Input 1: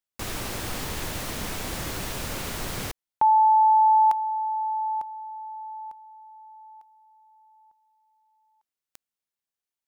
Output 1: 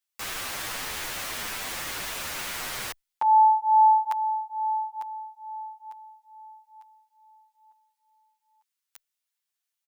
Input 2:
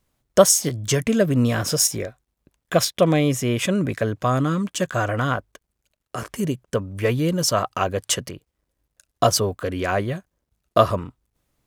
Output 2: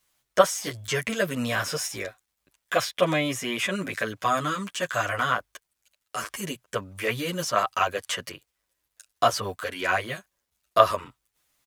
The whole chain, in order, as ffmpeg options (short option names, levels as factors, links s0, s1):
-filter_complex "[0:a]acrossover=split=2600[s0][s1];[s1]acompressor=threshold=0.0126:ratio=4:attack=1:release=60[s2];[s0][s2]amix=inputs=2:normalize=0,tiltshelf=f=640:g=-10,asplit=2[s3][s4];[s4]adelay=8.9,afreqshift=-2.3[s5];[s3][s5]amix=inputs=2:normalize=1,volume=0.891"